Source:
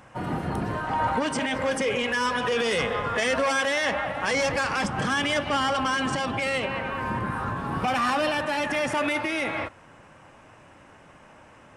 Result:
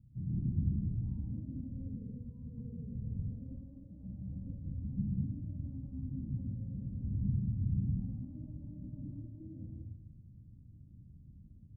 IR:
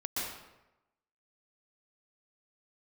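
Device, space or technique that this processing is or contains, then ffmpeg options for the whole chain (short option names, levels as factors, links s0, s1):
club heard from the street: -filter_complex "[0:a]alimiter=limit=0.0841:level=0:latency=1:release=462,lowpass=f=160:w=0.5412,lowpass=f=160:w=1.3066[s0];[1:a]atrim=start_sample=2205[s1];[s0][s1]afir=irnorm=-1:irlink=0,volume=1.26"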